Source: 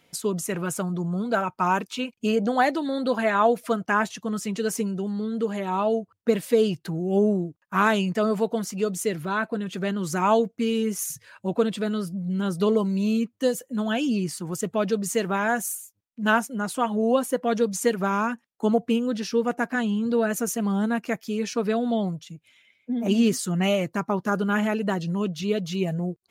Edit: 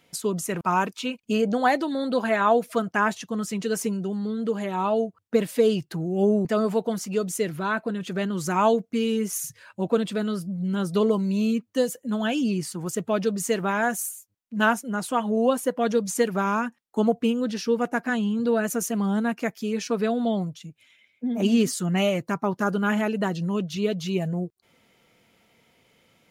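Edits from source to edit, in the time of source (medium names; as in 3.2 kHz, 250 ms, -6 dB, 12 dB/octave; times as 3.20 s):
0.61–1.55 s: delete
7.39–8.11 s: delete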